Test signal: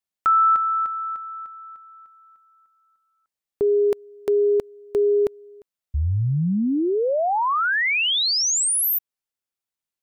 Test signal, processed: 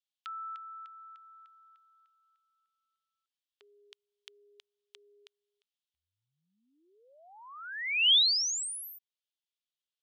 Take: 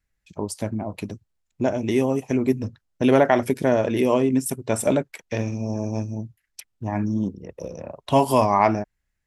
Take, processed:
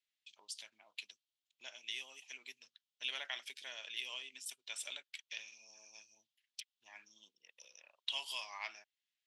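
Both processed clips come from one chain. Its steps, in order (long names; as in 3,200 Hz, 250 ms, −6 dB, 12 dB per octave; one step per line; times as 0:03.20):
in parallel at −2.5 dB: downward compressor, threshold −33 dBFS
on the sum: four-pole ladder band-pass 3,700 Hz, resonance 55%
level +2 dB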